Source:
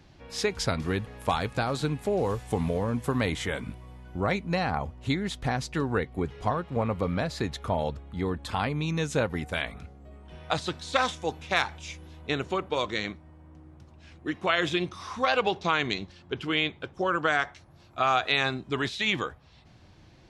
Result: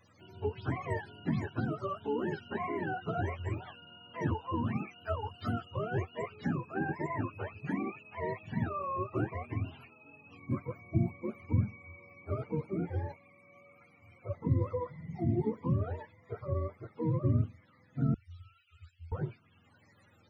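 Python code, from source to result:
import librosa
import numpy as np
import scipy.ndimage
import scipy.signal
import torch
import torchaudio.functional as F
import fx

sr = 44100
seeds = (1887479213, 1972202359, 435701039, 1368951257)

y = fx.octave_mirror(x, sr, pivot_hz=420.0)
y = fx.cheby2_bandstop(y, sr, low_hz=140.0, high_hz=950.0, order=4, stop_db=50, at=(18.14, 19.12))
y = y * 10.0 ** (-5.0 / 20.0)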